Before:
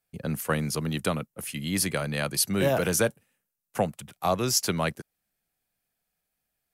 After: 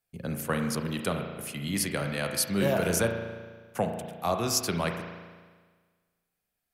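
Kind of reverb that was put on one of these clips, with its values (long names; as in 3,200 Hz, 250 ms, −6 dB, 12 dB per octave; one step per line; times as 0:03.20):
spring reverb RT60 1.5 s, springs 35 ms, chirp 40 ms, DRR 4 dB
level −3 dB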